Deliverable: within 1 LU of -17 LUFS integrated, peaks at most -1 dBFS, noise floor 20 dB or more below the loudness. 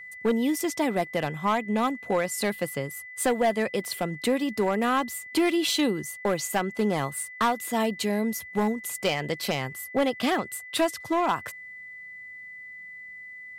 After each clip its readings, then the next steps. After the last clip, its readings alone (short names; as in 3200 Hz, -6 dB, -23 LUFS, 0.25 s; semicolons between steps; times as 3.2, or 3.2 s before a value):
clipped 0.9%; flat tops at -17.0 dBFS; steady tone 2000 Hz; tone level -40 dBFS; loudness -27.0 LUFS; peak -17.0 dBFS; loudness target -17.0 LUFS
-> clip repair -17 dBFS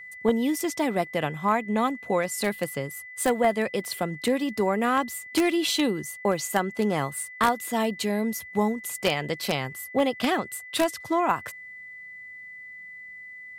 clipped 0.0%; steady tone 2000 Hz; tone level -40 dBFS
-> notch 2000 Hz, Q 30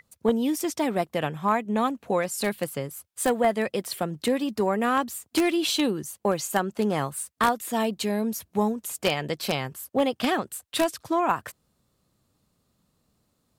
steady tone none; loudness -26.5 LUFS; peak -8.0 dBFS; loudness target -17.0 LUFS
-> gain +9.5 dB; limiter -1 dBFS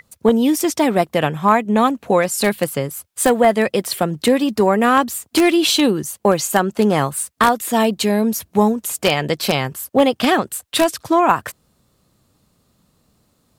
loudness -17.5 LUFS; peak -1.0 dBFS; noise floor -63 dBFS